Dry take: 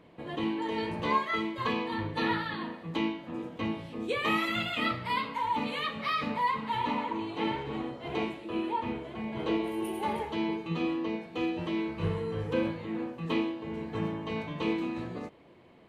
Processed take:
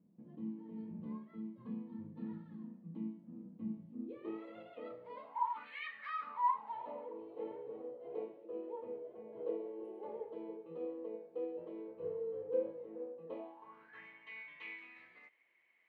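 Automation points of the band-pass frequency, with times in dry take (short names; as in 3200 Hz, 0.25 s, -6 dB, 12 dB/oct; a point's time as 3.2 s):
band-pass, Q 8.1
3.87 s 200 Hz
4.49 s 500 Hz
5.12 s 500 Hz
5.82 s 2200 Hz
7.08 s 490 Hz
13.26 s 490 Hz
14.06 s 2100 Hz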